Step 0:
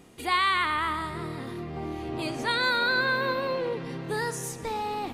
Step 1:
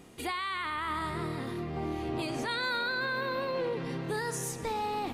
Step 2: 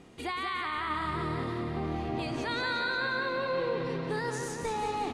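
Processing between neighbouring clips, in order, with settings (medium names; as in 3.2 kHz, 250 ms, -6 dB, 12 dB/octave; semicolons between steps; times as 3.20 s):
peak limiter -24.5 dBFS, peak gain reduction 11.5 dB
distance through air 61 m; feedback delay 180 ms, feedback 59%, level -5.5 dB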